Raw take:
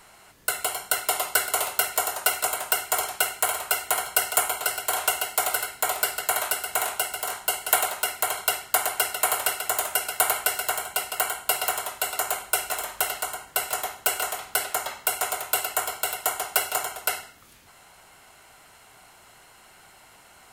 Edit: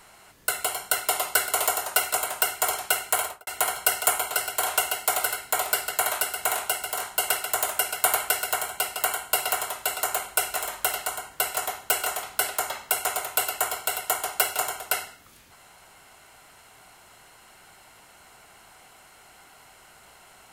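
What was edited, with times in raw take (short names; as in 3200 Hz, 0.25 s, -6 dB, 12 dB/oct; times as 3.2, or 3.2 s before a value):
1.67–1.97 cut
3.52–3.77 studio fade out
7.59–9.45 cut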